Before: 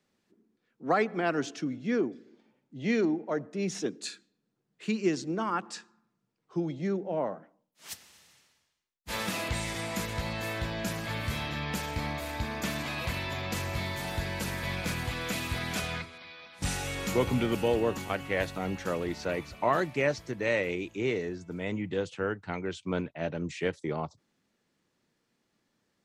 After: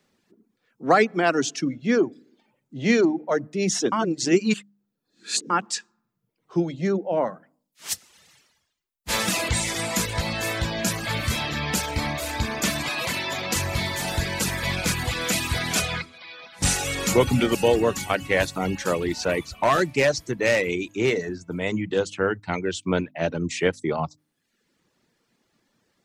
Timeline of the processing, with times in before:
3.92–5.50 s: reverse
12.89–13.56 s: high-pass 180 Hz
18.69–21.99 s: hard clipper -21.5 dBFS
whole clip: de-hum 50.55 Hz, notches 6; reverb removal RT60 0.73 s; dynamic bell 7.5 kHz, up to +7 dB, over -55 dBFS, Q 0.73; trim +8.5 dB

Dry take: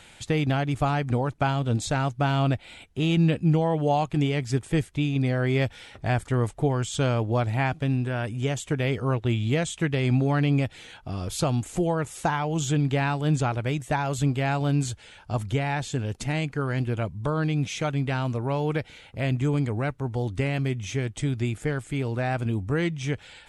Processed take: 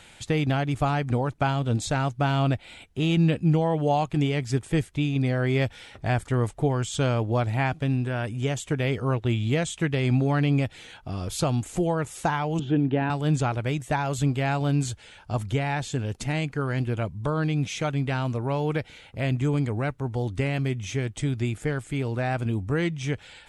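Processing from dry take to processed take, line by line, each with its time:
12.59–13.10 s: cabinet simulation 100–2800 Hz, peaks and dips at 150 Hz -3 dB, 230 Hz +7 dB, 340 Hz +8 dB, 1.2 kHz -8 dB, 2.2 kHz -9 dB

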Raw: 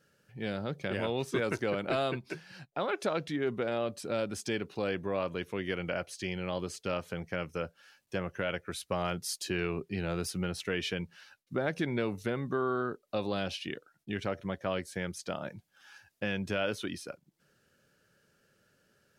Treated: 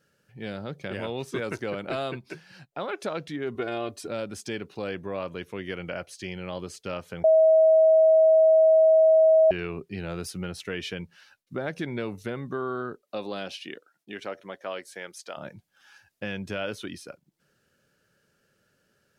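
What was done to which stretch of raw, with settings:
3.55–4.08 s: comb 2.8 ms, depth 94%
7.24–9.51 s: bleep 639 Hz -14 dBFS
13.01–15.36 s: high-pass 180 Hz -> 510 Hz

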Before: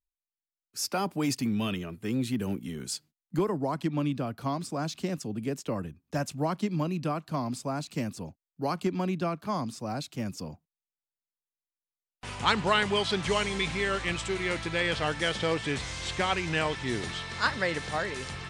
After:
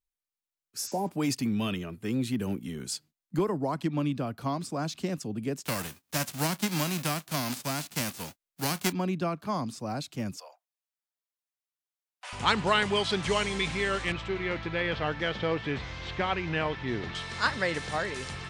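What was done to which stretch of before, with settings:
0.84–1.06 s: spectral replace 1–8.1 kHz
5.64–8.91 s: formants flattened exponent 0.3
10.37–12.33 s: elliptic high-pass 590 Hz, stop band 70 dB
14.12–17.15 s: distance through air 220 m

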